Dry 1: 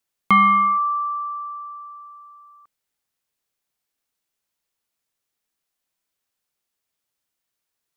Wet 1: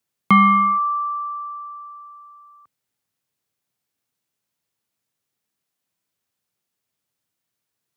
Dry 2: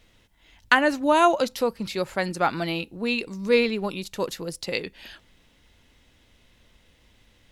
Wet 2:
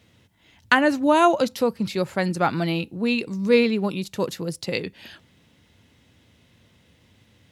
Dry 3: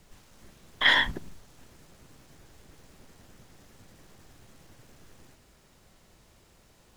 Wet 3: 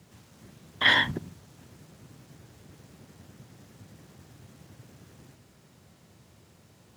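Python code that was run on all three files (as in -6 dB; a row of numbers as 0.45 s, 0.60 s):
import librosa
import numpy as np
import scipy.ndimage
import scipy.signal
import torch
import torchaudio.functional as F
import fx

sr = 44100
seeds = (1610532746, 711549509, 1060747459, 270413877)

y = scipy.signal.sosfilt(scipy.signal.butter(4, 94.0, 'highpass', fs=sr, output='sos'), x)
y = fx.low_shelf(y, sr, hz=220.0, db=11.5)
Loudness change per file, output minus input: +1.0 LU, +2.0 LU, -0.5 LU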